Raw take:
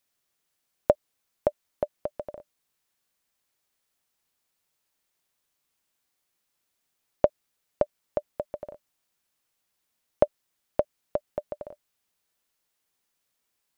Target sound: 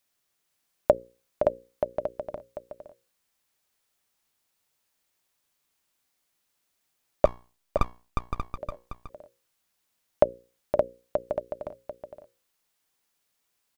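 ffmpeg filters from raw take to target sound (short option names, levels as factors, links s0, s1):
-filter_complex "[0:a]bandreject=f=60:t=h:w=6,bandreject=f=120:t=h:w=6,bandreject=f=180:t=h:w=6,bandreject=f=240:t=h:w=6,bandreject=f=300:t=h:w=6,bandreject=f=360:t=h:w=6,bandreject=f=420:t=h:w=6,bandreject=f=480:t=h:w=6,bandreject=f=540:t=h:w=6,asettb=1/sr,asplit=3[s0][s1][s2];[s0]atrim=end=7.254[s3];[s1]atrim=start=7.25:end=8.58,asetpts=PTS-STARTPTS,afade=t=in:d=0.004:c=qsin,afade=t=out:st=1.326:d=0.004:c=qsin,aeval=exprs='abs(val(0))':c=same[s4];[s2]atrim=start=8.576[s5];[s3][s4]acrossfade=d=0.004:c1=hsin:c2=qsin[s6];[s6][s5]acrossfade=d=0.004:c1=qsin:c2=hsin,aecho=1:1:516:0.422,volume=1.19"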